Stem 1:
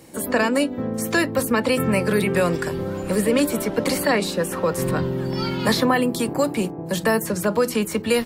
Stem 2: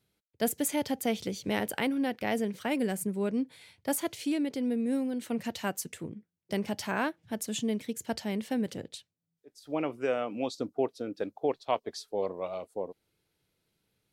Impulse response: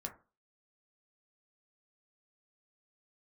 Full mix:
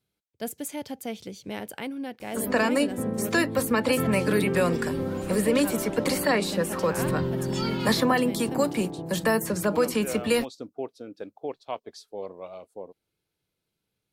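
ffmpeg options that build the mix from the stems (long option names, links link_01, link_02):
-filter_complex "[0:a]adelay=2200,volume=-3.5dB[link_01];[1:a]bandreject=frequency=1900:width=19,volume=-4.5dB[link_02];[link_01][link_02]amix=inputs=2:normalize=0"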